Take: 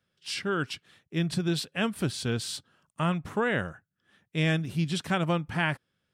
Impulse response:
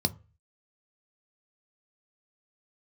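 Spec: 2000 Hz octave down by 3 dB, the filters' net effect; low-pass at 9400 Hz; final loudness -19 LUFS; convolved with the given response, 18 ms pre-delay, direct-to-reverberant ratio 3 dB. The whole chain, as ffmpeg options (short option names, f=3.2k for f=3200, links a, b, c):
-filter_complex "[0:a]lowpass=9.4k,equalizer=f=2k:t=o:g=-4,asplit=2[a][b];[1:a]atrim=start_sample=2205,adelay=18[c];[b][c]afir=irnorm=-1:irlink=0,volume=-10dB[d];[a][d]amix=inputs=2:normalize=0,volume=5dB"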